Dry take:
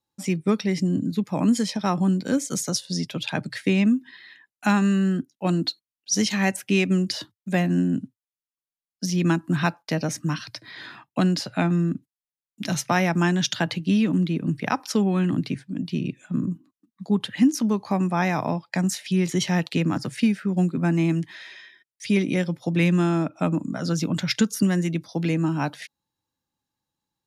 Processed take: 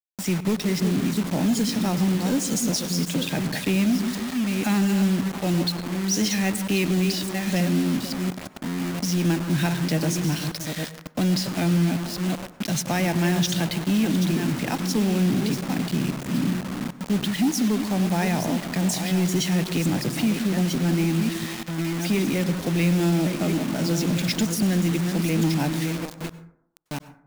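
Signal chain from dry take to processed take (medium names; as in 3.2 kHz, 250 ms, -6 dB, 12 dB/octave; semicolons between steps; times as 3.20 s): chunks repeated in reverse 692 ms, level -9 dB; peaking EQ 1.2 kHz -13 dB 0.6 oct; repeats whose band climbs or falls 168 ms, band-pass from 180 Hz, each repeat 0.7 oct, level -11 dB; saturation -16.5 dBFS, distortion -16 dB; peak limiter -20.5 dBFS, peak gain reduction 4 dB; bit crusher 6-bit; reverberation RT60 0.70 s, pre-delay 88 ms, DRR 14 dB; trim +3.5 dB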